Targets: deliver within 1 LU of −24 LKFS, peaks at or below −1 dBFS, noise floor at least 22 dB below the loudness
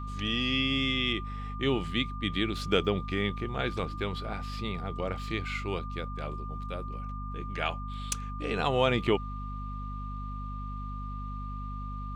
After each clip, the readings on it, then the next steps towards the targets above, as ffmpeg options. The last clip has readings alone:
mains hum 50 Hz; hum harmonics up to 250 Hz; level of the hum −35 dBFS; interfering tone 1,200 Hz; level of the tone −41 dBFS; integrated loudness −32.0 LKFS; sample peak −11.0 dBFS; target loudness −24.0 LKFS
→ -af "bandreject=frequency=50:width_type=h:width=4,bandreject=frequency=100:width_type=h:width=4,bandreject=frequency=150:width_type=h:width=4,bandreject=frequency=200:width_type=h:width=4,bandreject=frequency=250:width_type=h:width=4"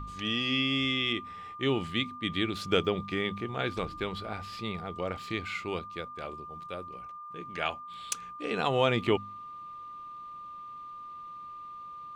mains hum none found; interfering tone 1,200 Hz; level of the tone −41 dBFS
→ -af "bandreject=frequency=1200:width=30"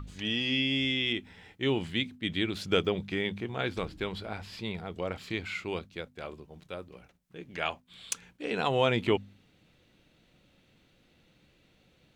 interfering tone none found; integrated loudness −31.5 LKFS; sample peak −10.5 dBFS; target loudness −24.0 LKFS
→ -af "volume=7.5dB"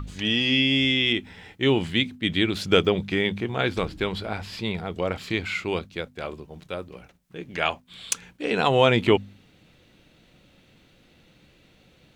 integrated loudness −24.0 LKFS; sample peak −3.0 dBFS; background noise floor −58 dBFS

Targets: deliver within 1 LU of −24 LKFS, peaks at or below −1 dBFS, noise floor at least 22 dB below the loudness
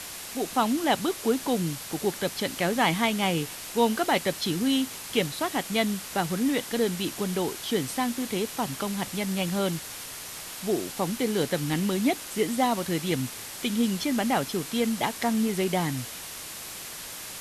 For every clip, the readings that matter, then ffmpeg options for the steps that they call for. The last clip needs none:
background noise floor −39 dBFS; target noise floor −50 dBFS; integrated loudness −27.5 LKFS; sample peak −9.5 dBFS; target loudness −24.0 LKFS
→ -af "afftdn=noise_reduction=11:noise_floor=-39"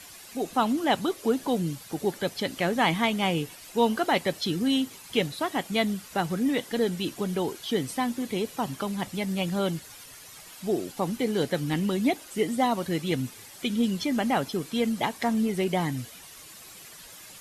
background noise floor −47 dBFS; target noise floor −50 dBFS
→ -af "afftdn=noise_reduction=6:noise_floor=-47"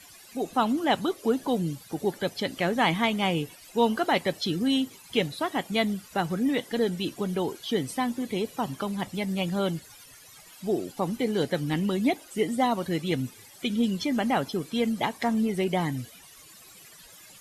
background noise floor −51 dBFS; integrated loudness −28.0 LKFS; sample peak −9.5 dBFS; target loudness −24.0 LKFS
→ -af "volume=4dB"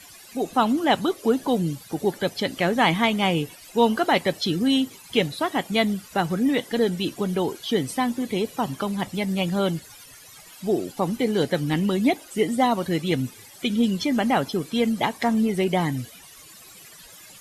integrated loudness −24.0 LKFS; sample peak −5.5 dBFS; background noise floor −47 dBFS

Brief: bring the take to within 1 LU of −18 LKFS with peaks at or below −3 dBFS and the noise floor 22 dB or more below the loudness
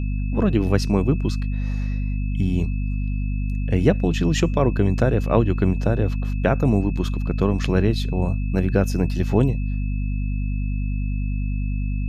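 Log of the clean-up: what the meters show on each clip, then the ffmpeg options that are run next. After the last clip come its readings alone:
mains hum 50 Hz; hum harmonics up to 250 Hz; level of the hum −21 dBFS; interfering tone 2,600 Hz; level of the tone −43 dBFS; integrated loudness −22.5 LKFS; sample peak −3.0 dBFS; target loudness −18.0 LKFS
→ -af "bandreject=frequency=50:width_type=h:width=4,bandreject=frequency=100:width_type=h:width=4,bandreject=frequency=150:width_type=h:width=4,bandreject=frequency=200:width_type=h:width=4,bandreject=frequency=250:width_type=h:width=4"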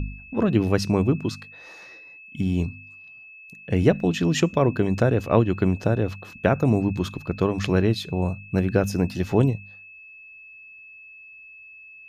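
mains hum none found; interfering tone 2,600 Hz; level of the tone −43 dBFS
→ -af "bandreject=frequency=2600:width=30"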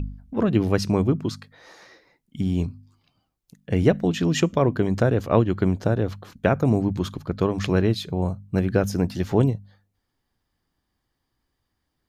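interfering tone none found; integrated loudness −23.0 LKFS; sample peak −4.0 dBFS; target loudness −18.0 LKFS
→ -af "volume=5dB,alimiter=limit=-3dB:level=0:latency=1"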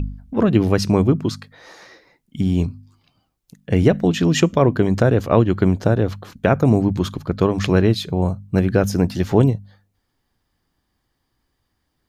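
integrated loudness −18.5 LKFS; sample peak −3.0 dBFS; background noise floor −73 dBFS

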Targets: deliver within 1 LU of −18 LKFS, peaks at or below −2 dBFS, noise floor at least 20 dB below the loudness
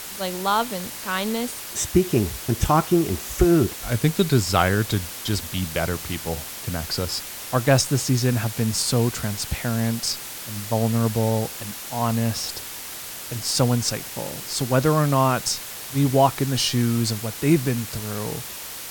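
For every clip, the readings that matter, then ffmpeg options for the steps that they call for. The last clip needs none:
background noise floor −35 dBFS; target noise floor −43 dBFS; integrated loudness −23.0 LKFS; sample peak −3.5 dBFS; target loudness −18.0 LKFS
→ -af "afftdn=noise_reduction=8:noise_floor=-35"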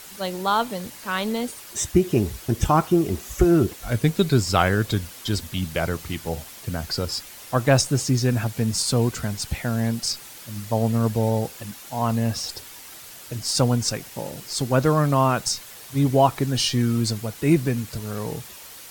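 background noise floor −42 dBFS; target noise floor −44 dBFS
→ -af "afftdn=noise_reduction=6:noise_floor=-42"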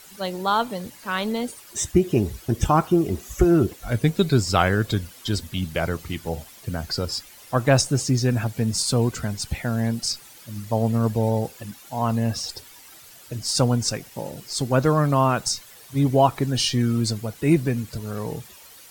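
background noise floor −47 dBFS; integrated loudness −23.5 LKFS; sample peak −3.5 dBFS; target loudness −18.0 LKFS
→ -af "volume=5.5dB,alimiter=limit=-2dB:level=0:latency=1"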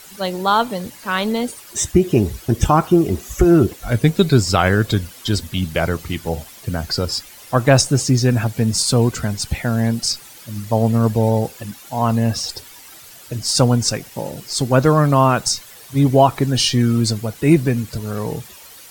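integrated loudness −18.0 LKFS; sample peak −2.0 dBFS; background noise floor −41 dBFS

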